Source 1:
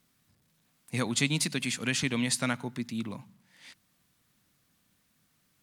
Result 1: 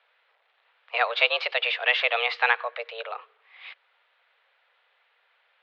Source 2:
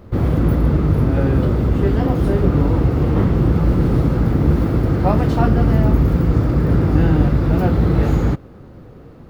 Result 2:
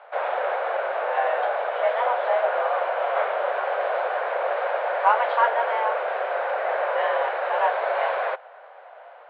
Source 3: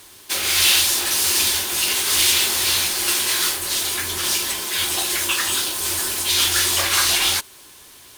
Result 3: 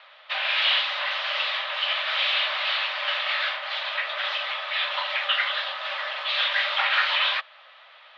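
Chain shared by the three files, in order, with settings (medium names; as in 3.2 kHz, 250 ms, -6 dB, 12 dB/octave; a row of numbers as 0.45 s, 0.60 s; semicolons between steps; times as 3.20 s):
overdrive pedal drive 11 dB, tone 2 kHz, clips at -1 dBFS; mistuned SSB +230 Hz 330–3400 Hz; normalise loudness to -24 LUFS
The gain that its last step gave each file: +7.5 dB, -1.0 dB, -2.0 dB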